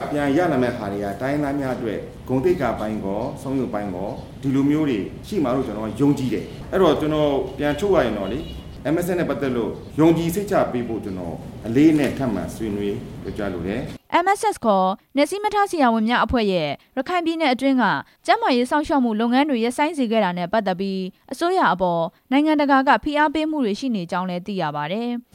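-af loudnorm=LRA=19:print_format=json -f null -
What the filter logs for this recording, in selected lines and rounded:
"input_i" : "-21.3",
"input_tp" : "-3.5",
"input_lra" : "3.1",
"input_thresh" : "-31.4",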